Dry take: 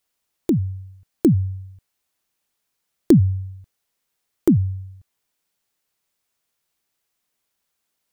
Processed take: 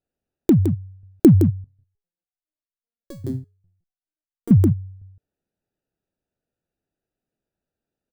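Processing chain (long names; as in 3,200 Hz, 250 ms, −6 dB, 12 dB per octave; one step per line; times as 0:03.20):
adaptive Wiener filter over 41 samples
single-tap delay 164 ms −8.5 dB
0:01.64–0:04.51: step-sequenced resonator 5 Hz 130–1,000 Hz
level +4.5 dB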